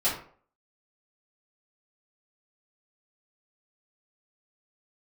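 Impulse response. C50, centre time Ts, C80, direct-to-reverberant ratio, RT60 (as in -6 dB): 5.5 dB, 33 ms, 10.0 dB, -11.5 dB, 0.50 s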